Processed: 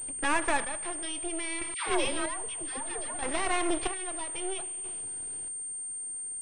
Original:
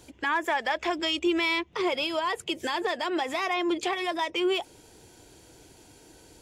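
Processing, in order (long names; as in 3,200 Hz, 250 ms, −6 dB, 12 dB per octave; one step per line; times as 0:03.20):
reverb whose tail is shaped and stops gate 470 ms falling, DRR 11 dB
half-wave rectification
0:01.74–0:03.19: all-pass dispersion lows, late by 137 ms, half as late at 890 Hz
square-wave tremolo 0.62 Hz, depth 65%, duty 40%
switching amplifier with a slow clock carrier 8,700 Hz
level +3 dB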